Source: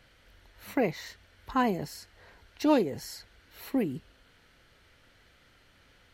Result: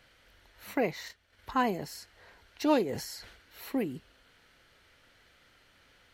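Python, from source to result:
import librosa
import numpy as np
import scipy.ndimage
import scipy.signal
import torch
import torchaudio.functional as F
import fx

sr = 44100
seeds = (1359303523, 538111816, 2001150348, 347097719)

y = fx.low_shelf(x, sr, hz=290.0, db=-6.0)
y = fx.transient(y, sr, attack_db=4, sustain_db=-9, at=(1.03, 1.5))
y = fx.sustainer(y, sr, db_per_s=65.0, at=(2.88, 3.71), fade=0.02)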